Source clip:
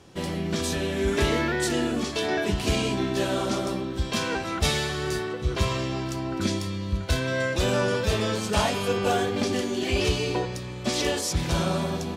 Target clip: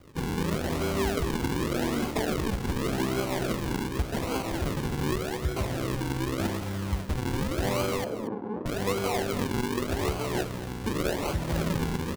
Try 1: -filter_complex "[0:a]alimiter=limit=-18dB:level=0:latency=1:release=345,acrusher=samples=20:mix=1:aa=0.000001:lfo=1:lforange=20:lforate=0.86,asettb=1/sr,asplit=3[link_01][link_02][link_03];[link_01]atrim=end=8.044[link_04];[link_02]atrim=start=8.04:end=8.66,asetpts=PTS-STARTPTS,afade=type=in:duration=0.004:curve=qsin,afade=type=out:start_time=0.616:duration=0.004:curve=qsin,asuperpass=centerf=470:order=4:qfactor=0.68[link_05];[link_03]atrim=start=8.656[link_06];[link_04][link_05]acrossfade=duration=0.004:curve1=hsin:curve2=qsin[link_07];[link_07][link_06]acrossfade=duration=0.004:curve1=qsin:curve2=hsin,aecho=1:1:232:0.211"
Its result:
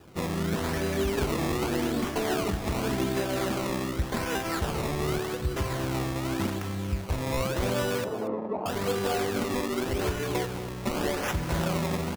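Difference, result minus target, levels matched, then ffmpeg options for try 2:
sample-and-hold swept by an LFO: distortion −7 dB
-filter_complex "[0:a]alimiter=limit=-18dB:level=0:latency=1:release=345,acrusher=samples=48:mix=1:aa=0.000001:lfo=1:lforange=48:lforate=0.86,asettb=1/sr,asplit=3[link_01][link_02][link_03];[link_01]atrim=end=8.044[link_04];[link_02]atrim=start=8.04:end=8.66,asetpts=PTS-STARTPTS,afade=type=in:duration=0.004:curve=qsin,afade=type=out:start_time=0.616:duration=0.004:curve=qsin,asuperpass=centerf=470:order=4:qfactor=0.68[link_05];[link_03]atrim=start=8.656[link_06];[link_04][link_05]acrossfade=duration=0.004:curve1=hsin:curve2=qsin[link_07];[link_07][link_06]acrossfade=duration=0.004:curve1=qsin:curve2=hsin,aecho=1:1:232:0.211"

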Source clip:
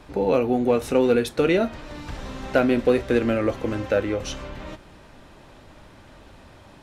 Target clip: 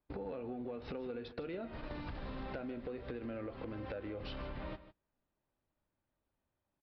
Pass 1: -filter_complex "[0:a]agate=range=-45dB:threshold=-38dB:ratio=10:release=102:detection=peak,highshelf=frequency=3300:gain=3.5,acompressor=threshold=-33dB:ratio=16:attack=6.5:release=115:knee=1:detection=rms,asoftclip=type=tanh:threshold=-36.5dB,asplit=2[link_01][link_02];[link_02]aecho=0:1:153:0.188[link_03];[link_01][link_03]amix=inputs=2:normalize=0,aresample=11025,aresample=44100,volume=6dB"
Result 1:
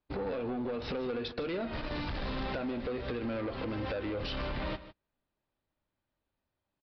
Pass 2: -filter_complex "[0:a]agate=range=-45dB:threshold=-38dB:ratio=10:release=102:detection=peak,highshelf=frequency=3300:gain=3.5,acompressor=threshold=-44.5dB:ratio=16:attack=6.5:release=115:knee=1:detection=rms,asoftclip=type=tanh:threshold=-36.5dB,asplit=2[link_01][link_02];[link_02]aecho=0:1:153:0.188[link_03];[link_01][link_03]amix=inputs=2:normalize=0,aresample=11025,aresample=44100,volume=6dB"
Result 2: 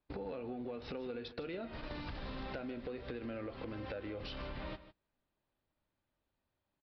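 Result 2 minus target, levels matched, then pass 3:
4,000 Hz band +4.0 dB
-filter_complex "[0:a]agate=range=-45dB:threshold=-38dB:ratio=10:release=102:detection=peak,highshelf=frequency=3300:gain=-7.5,acompressor=threshold=-44.5dB:ratio=16:attack=6.5:release=115:knee=1:detection=rms,asoftclip=type=tanh:threshold=-36.5dB,asplit=2[link_01][link_02];[link_02]aecho=0:1:153:0.188[link_03];[link_01][link_03]amix=inputs=2:normalize=0,aresample=11025,aresample=44100,volume=6dB"

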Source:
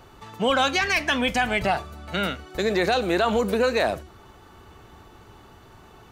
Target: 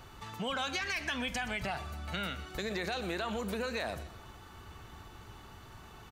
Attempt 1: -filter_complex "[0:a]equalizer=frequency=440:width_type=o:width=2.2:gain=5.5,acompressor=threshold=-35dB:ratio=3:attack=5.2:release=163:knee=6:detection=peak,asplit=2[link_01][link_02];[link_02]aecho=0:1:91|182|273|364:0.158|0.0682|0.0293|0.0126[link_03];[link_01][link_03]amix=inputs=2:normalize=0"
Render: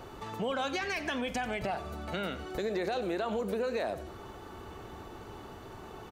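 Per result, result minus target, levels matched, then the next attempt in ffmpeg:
echo 33 ms early; 500 Hz band +4.5 dB
-filter_complex "[0:a]equalizer=frequency=440:width_type=o:width=2.2:gain=5.5,acompressor=threshold=-35dB:ratio=3:attack=5.2:release=163:knee=6:detection=peak,asplit=2[link_01][link_02];[link_02]aecho=0:1:124|248|372|496:0.158|0.0682|0.0293|0.0126[link_03];[link_01][link_03]amix=inputs=2:normalize=0"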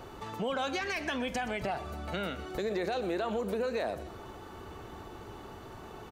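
500 Hz band +4.5 dB
-filter_complex "[0:a]equalizer=frequency=440:width_type=o:width=2.2:gain=-6.5,acompressor=threshold=-35dB:ratio=3:attack=5.2:release=163:knee=6:detection=peak,asplit=2[link_01][link_02];[link_02]aecho=0:1:124|248|372|496:0.158|0.0682|0.0293|0.0126[link_03];[link_01][link_03]amix=inputs=2:normalize=0"

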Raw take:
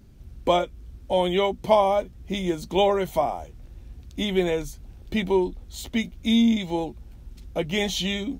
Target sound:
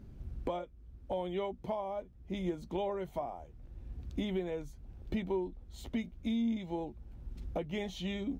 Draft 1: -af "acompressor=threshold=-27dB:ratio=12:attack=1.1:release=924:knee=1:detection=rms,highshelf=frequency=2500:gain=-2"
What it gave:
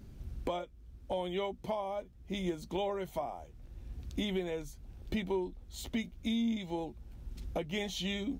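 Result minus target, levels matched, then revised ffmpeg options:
4,000 Hz band +6.0 dB
-af "acompressor=threshold=-27dB:ratio=12:attack=1.1:release=924:knee=1:detection=rms,highshelf=frequency=2500:gain=-12.5"

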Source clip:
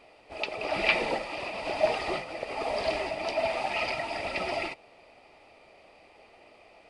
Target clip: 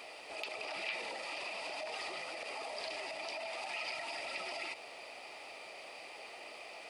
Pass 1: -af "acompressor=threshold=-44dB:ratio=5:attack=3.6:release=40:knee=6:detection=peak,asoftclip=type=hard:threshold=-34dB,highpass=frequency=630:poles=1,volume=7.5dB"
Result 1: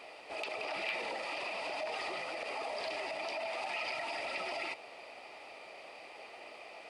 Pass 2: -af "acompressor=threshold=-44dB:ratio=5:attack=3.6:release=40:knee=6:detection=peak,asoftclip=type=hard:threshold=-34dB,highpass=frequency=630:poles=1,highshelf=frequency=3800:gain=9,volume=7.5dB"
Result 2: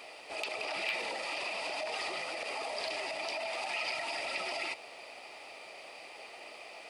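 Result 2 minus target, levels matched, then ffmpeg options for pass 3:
downward compressor: peak gain reduction −5 dB
-af "acompressor=threshold=-50dB:ratio=5:attack=3.6:release=40:knee=6:detection=peak,asoftclip=type=hard:threshold=-34dB,highpass=frequency=630:poles=1,highshelf=frequency=3800:gain=9,volume=7.5dB"

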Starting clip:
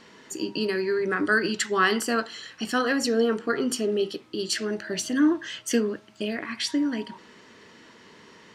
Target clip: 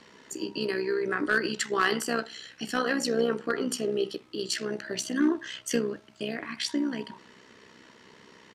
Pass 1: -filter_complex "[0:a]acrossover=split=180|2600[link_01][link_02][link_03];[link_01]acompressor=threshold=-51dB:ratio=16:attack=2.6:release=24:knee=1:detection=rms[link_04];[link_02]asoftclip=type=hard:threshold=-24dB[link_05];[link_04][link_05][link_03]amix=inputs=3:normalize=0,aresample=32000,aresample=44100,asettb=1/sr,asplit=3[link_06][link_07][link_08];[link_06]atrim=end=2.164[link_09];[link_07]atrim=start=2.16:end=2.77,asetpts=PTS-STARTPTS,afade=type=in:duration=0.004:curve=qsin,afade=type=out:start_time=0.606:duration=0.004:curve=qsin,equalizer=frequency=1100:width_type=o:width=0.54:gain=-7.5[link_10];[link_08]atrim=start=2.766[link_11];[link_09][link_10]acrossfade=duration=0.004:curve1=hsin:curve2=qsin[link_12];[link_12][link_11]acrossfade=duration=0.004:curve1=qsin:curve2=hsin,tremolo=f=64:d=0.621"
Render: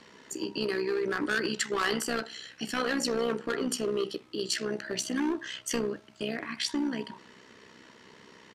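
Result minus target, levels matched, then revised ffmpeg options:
hard clipping: distortion +15 dB
-filter_complex "[0:a]acrossover=split=180|2600[link_01][link_02][link_03];[link_01]acompressor=threshold=-51dB:ratio=16:attack=2.6:release=24:knee=1:detection=rms[link_04];[link_02]asoftclip=type=hard:threshold=-15.5dB[link_05];[link_04][link_05][link_03]amix=inputs=3:normalize=0,aresample=32000,aresample=44100,asettb=1/sr,asplit=3[link_06][link_07][link_08];[link_06]atrim=end=2.164[link_09];[link_07]atrim=start=2.16:end=2.77,asetpts=PTS-STARTPTS,afade=type=in:duration=0.004:curve=qsin,afade=type=out:start_time=0.606:duration=0.004:curve=qsin,equalizer=frequency=1100:width_type=o:width=0.54:gain=-7.5[link_10];[link_08]atrim=start=2.766[link_11];[link_09][link_10]acrossfade=duration=0.004:curve1=hsin:curve2=qsin[link_12];[link_12][link_11]acrossfade=duration=0.004:curve1=qsin:curve2=hsin,tremolo=f=64:d=0.621"

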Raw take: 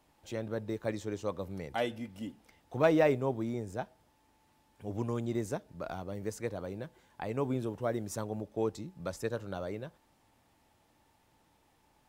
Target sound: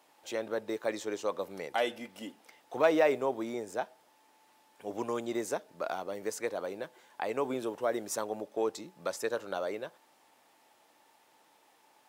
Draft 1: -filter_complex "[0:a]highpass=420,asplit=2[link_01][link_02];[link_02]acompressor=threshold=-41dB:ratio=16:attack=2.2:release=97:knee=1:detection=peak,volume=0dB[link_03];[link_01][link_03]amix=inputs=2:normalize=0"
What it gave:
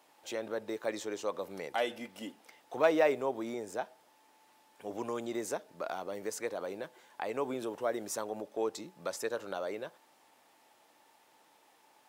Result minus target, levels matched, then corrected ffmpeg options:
downward compressor: peak gain reduction +8 dB
-filter_complex "[0:a]highpass=420,asplit=2[link_01][link_02];[link_02]acompressor=threshold=-32.5dB:ratio=16:attack=2.2:release=97:knee=1:detection=peak,volume=0dB[link_03];[link_01][link_03]amix=inputs=2:normalize=0"

